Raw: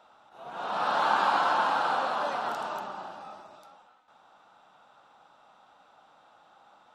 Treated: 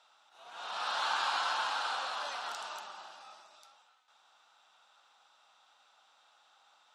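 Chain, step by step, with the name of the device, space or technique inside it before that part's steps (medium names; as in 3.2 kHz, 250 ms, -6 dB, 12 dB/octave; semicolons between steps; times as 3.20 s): piezo pickup straight into a mixer (low-pass 6.6 kHz 12 dB/octave; differentiator); trim +8 dB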